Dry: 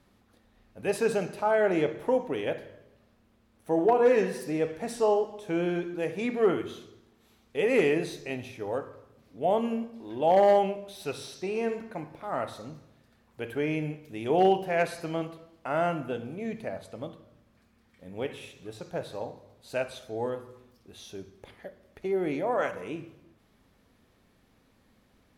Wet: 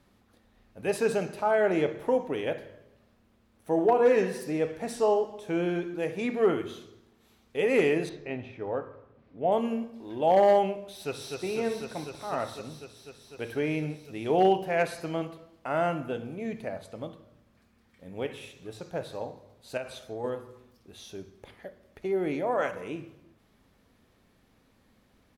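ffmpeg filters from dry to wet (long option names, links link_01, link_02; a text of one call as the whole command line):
ffmpeg -i in.wav -filter_complex "[0:a]asettb=1/sr,asplit=3[link_01][link_02][link_03];[link_01]atrim=end=8.094[link_04];[link_02]atrim=start=8.09:end=9.52,asetpts=PTS-STARTPTS,afade=type=in:duration=0.004:curve=qsin,afade=type=out:start_time=1.426:duration=0.004:curve=qsin,lowpass=2400[link_05];[link_03]atrim=start=9.516[link_06];[link_04][link_05]acrossfade=duration=0.004:curve1=hsin:curve2=qsin[link_07];[link_07][link_06]acrossfade=duration=0.004:curve1=qsin:curve2=hsin,asplit=2[link_08][link_09];[link_09]afade=type=in:start_time=10.95:duration=0.01,afade=type=out:start_time=11.41:duration=0.01,aecho=0:1:250|500|750|1000|1250|1500|1750|2000|2250|2500|2750|3000:0.630957|0.536314|0.455867|0.387487|0.329364|0.279959|0.237965|0.20227|0.17193|0.14614|0.124219|0.105586[link_10];[link_08][link_10]amix=inputs=2:normalize=0,asettb=1/sr,asplit=3[link_11][link_12][link_13];[link_11]atrim=end=19.774[link_14];[link_12]atrim=start=19.77:end=20.24,asetpts=PTS-STARTPTS,afade=type=in:duration=0.004:curve=qsin,afade=type=out:start_time=0.466:duration=0.004:curve=qsin,acompressor=threshold=-31dB:ratio=6:attack=3.2:release=140:knee=1:detection=peak[link_15];[link_13]atrim=start=20.236[link_16];[link_14][link_15]acrossfade=duration=0.004:curve1=hsin:curve2=qsin[link_17];[link_17][link_16]acrossfade=duration=0.004:curve1=qsin:curve2=hsin" out.wav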